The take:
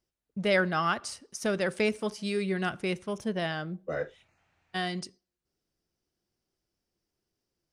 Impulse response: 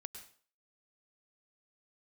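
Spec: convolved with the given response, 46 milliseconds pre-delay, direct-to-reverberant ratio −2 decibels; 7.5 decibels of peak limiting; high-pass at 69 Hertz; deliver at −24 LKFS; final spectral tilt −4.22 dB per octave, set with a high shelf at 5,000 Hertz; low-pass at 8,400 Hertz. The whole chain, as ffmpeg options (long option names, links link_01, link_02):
-filter_complex "[0:a]highpass=69,lowpass=8400,highshelf=frequency=5000:gain=-7.5,alimiter=limit=-21.5dB:level=0:latency=1,asplit=2[link_01][link_02];[1:a]atrim=start_sample=2205,adelay=46[link_03];[link_02][link_03]afir=irnorm=-1:irlink=0,volume=6.5dB[link_04];[link_01][link_04]amix=inputs=2:normalize=0,volume=5dB"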